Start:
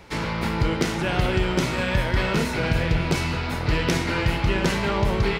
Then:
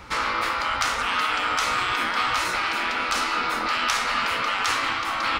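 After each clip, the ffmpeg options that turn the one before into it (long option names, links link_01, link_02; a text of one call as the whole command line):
ffmpeg -i in.wav -af "afftfilt=real='re*lt(hypot(re,im),0.141)':imag='im*lt(hypot(re,im),0.141)':win_size=1024:overlap=0.75,equalizer=frequency=160:width_type=o:width=0.33:gain=-9,equalizer=frequency=400:width_type=o:width=0.33:gain=-8,equalizer=frequency=630:width_type=o:width=0.33:gain=-5,equalizer=frequency=1250:width_type=o:width=0.33:gain=11,equalizer=frequency=12500:width_type=o:width=0.33:gain=-5,volume=4dB" out.wav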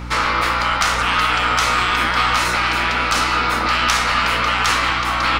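ffmpeg -i in.wav -af "acontrast=75,aeval=exprs='0.708*(cos(1*acos(clip(val(0)/0.708,-1,1)))-cos(1*PI/2))+0.0891*(cos(2*acos(clip(val(0)/0.708,-1,1)))-cos(2*PI/2))':channel_layout=same,aeval=exprs='val(0)+0.0355*(sin(2*PI*60*n/s)+sin(2*PI*2*60*n/s)/2+sin(2*PI*3*60*n/s)/3+sin(2*PI*4*60*n/s)/4+sin(2*PI*5*60*n/s)/5)':channel_layout=same" out.wav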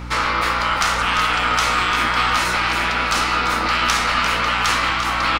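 ffmpeg -i in.wav -af "aecho=1:1:345:0.299,volume=-1.5dB" out.wav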